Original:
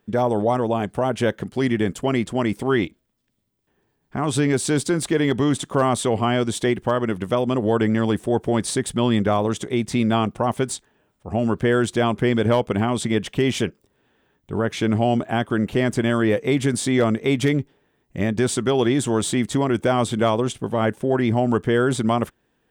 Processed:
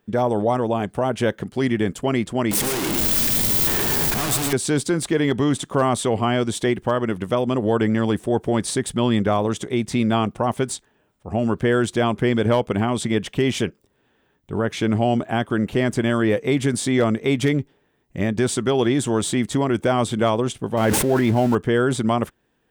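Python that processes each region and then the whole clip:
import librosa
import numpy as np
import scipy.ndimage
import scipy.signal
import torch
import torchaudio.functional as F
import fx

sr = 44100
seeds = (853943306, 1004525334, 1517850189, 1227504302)

y = fx.chain(x, sr, fx.clip_1bit(),
    fx.high_shelf(hz=5100.0, db=8.5),
    fx.echo_single(ms=113, db=-6.0), at=(2.51, 4.53))
y = fx.chain(y, sr, fx.zero_step(step_db=-29.0),
    fx.notch(hz=1200.0, q=15.0),
    fx.sustainer(db_per_s=25.0), at=(20.77, 21.55))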